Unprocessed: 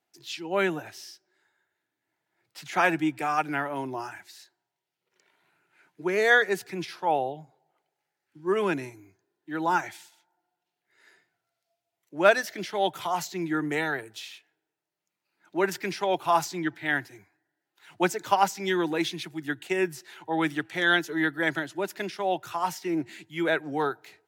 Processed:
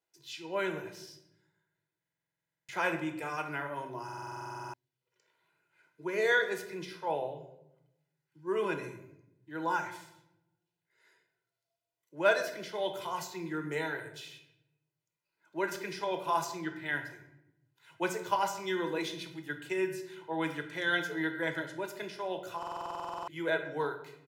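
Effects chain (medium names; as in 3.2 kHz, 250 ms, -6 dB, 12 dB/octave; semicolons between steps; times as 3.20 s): comb 2 ms, depth 53%; simulated room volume 240 m³, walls mixed, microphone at 0.63 m; buffer glitch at 1.99/4.04/22.58 s, samples 2048, times 14; trim -9 dB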